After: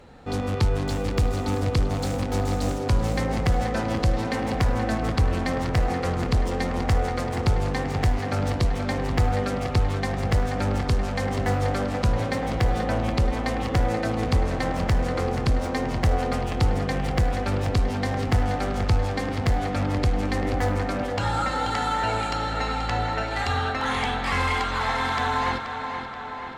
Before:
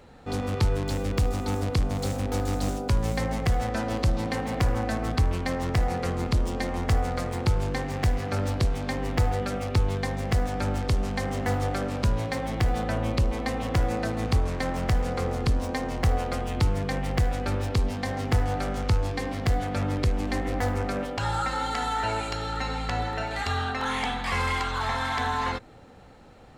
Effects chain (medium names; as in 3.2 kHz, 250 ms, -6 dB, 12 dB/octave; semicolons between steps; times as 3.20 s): treble shelf 9.7 kHz -5.5 dB; in parallel at -10 dB: one-sided clip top -25.5 dBFS; on the sum: tape echo 480 ms, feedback 72%, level -7 dB, low-pass 4.7 kHz